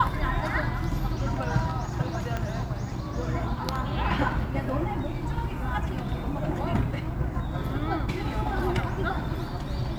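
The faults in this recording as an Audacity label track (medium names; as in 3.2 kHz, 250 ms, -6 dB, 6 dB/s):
2.370000	2.370000	pop -17 dBFS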